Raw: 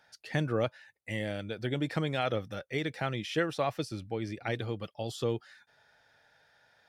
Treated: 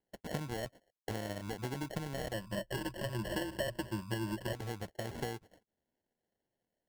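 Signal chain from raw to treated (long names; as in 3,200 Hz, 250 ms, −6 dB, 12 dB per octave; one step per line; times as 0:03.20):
downward compressor 16 to 1, threshold −39 dBFS, peak gain reduction 16.5 dB
noise gate −55 dBFS, range −27 dB
decimation without filtering 36×
0:02.33–0:04.53: EQ curve with evenly spaced ripples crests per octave 1.3, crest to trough 14 dB
level +4 dB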